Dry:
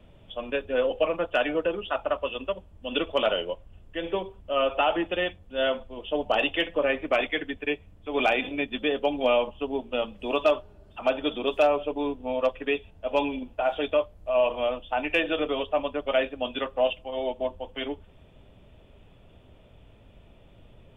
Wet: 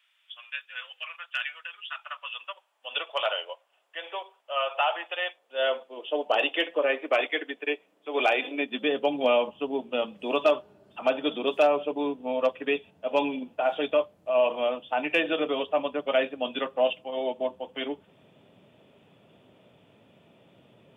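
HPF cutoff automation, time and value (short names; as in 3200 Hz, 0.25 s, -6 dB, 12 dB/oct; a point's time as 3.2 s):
HPF 24 dB/oct
1.93 s 1500 Hz
2.96 s 670 Hz
5.17 s 670 Hz
5.94 s 320 Hz
8.43 s 320 Hz
8.94 s 140 Hz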